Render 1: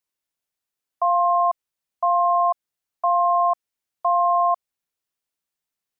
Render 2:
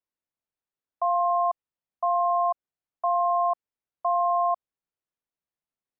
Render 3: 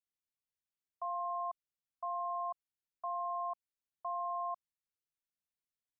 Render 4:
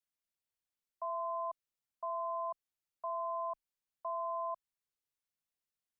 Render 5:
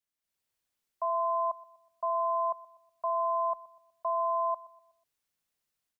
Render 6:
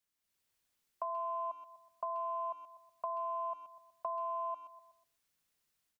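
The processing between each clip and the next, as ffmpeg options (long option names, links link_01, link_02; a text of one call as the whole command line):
ffmpeg -i in.wav -af "lowpass=frequency=1100:poles=1,volume=-2.5dB" out.wav
ffmpeg -i in.wav -af "equalizer=frequency=620:width=0.62:gain=-11.5,volume=-5dB" out.wav
ffmpeg -i in.wav -af "afreqshift=-29" out.wav
ffmpeg -i in.wav -filter_complex "[0:a]dynaudnorm=framelen=190:gausssize=3:maxgain=8dB,asplit=2[link_01][link_02];[link_02]adelay=123,lowpass=frequency=940:poles=1,volume=-18dB,asplit=2[link_03][link_04];[link_04]adelay=123,lowpass=frequency=940:poles=1,volume=0.53,asplit=2[link_05][link_06];[link_06]adelay=123,lowpass=frequency=940:poles=1,volume=0.53,asplit=2[link_07][link_08];[link_08]adelay=123,lowpass=frequency=940:poles=1,volume=0.53[link_09];[link_01][link_03][link_05][link_07][link_09]amix=inputs=5:normalize=0" out.wav
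ffmpeg -i in.wav -filter_complex "[0:a]equalizer=frequency=640:width=1.5:gain=-2.5,acompressor=threshold=-40dB:ratio=5,asplit=2[link_01][link_02];[link_02]adelay=130,highpass=300,lowpass=3400,asoftclip=type=hard:threshold=-40dB,volume=-19dB[link_03];[link_01][link_03]amix=inputs=2:normalize=0,volume=3dB" out.wav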